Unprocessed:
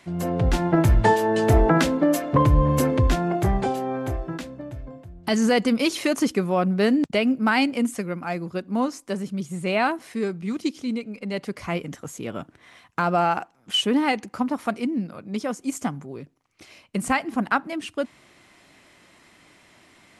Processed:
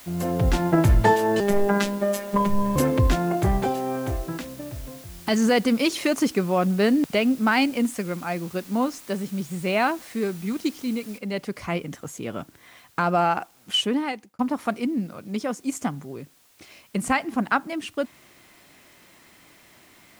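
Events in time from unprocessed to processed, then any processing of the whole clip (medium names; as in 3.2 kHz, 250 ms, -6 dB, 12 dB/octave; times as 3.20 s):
1.40–2.76 s: robot voice 201 Hz
11.18 s: noise floor step -47 dB -59 dB
13.75–14.39 s: fade out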